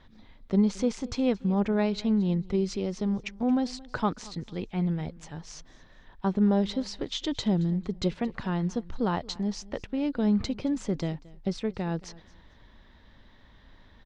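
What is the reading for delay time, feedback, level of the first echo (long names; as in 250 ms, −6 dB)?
224 ms, 25%, −21.5 dB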